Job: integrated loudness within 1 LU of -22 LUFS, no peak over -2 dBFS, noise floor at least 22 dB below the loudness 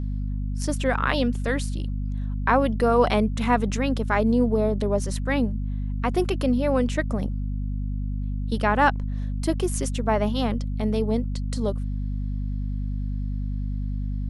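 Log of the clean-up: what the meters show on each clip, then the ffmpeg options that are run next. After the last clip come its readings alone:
hum 50 Hz; harmonics up to 250 Hz; hum level -25 dBFS; loudness -25.5 LUFS; peak -6.0 dBFS; loudness target -22.0 LUFS
-> -af "bandreject=f=50:t=h:w=6,bandreject=f=100:t=h:w=6,bandreject=f=150:t=h:w=6,bandreject=f=200:t=h:w=6,bandreject=f=250:t=h:w=6"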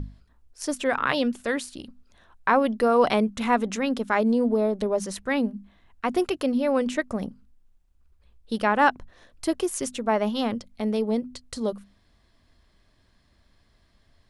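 hum none; loudness -25.0 LUFS; peak -7.5 dBFS; loudness target -22.0 LUFS
-> -af "volume=3dB"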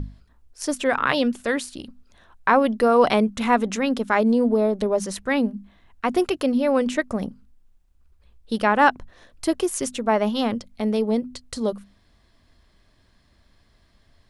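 loudness -22.0 LUFS; peak -4.5 dBFS; noise floor -61 dBFS

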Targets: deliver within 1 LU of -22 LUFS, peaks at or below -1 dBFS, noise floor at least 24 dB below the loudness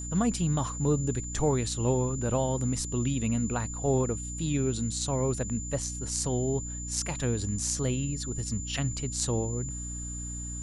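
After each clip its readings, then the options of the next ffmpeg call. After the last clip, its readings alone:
hum 60 Hz; harmonics up to 300 Hz; hum level -36 dBFS; steady tone 7100 Hz; tone level -38 dBFS; loudness -29.5 LUFS; peak -11.5 dBFS; loudness target -22.0 LUFS
-> -af "bandreject=f=60:t=h:w=4,bandreject=f=120:t=h:w=4,bandreject=f=180:t=h:w=4,bandreject=f=240:t=h:w=4,bandreject=f=300:t=h:w=4"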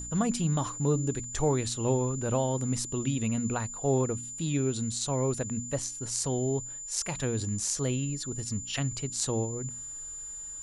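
hum none; steady tone 7100 Hz; tone level -38 dBFS
-> -af "bandreject=f=7.1k:w=30"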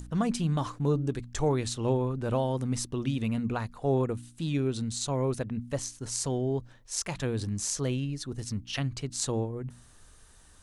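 steady tone none; loudness -31.0 LUFS; peak -12.0 dBFS; loudness target -22.0 LUFS
-> -af "volume=9dB"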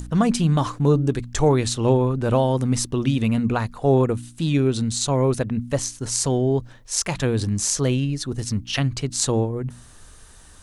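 loudness -22.0 LUFS; peak -3.0 dBFS; noise floor -47 dBFS

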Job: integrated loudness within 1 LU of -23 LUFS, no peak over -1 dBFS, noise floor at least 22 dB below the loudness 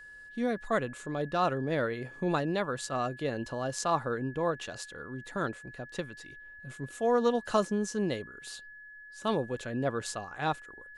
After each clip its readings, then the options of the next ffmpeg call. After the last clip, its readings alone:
steady tone 1700 Hz; tone level -47 dBFS; loudness -32.5 LUFS; peak -13.5 dBFS; loudness target -23.0 LUFS
-> -af "bandreject=f=1.7k:w=30"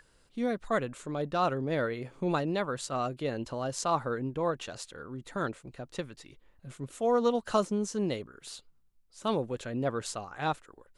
steady tone none; loudness -32.5 LUFS; peak -13.5 dBFS; loudness target -23.0 LUFS
-> -af "volume=9.5dB"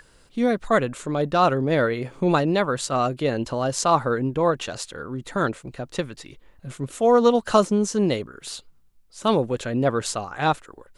loudness -23.0 LUFS; peak -4.0 dBFS; noise floor -56 dBFS

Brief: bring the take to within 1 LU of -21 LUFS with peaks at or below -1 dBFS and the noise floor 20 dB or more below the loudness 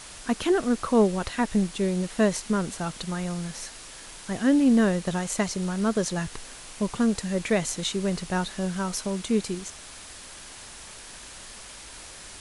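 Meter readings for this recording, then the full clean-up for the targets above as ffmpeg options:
noise floor -44 dBFS; noise floor target -46 dBFS; loudness -26.0 LUFS; peak -10.5 dBFS; loudness target -21.0 LUFS
-> -af "afftdn=nr=6:nf=-44"
-af "volume=5dB"

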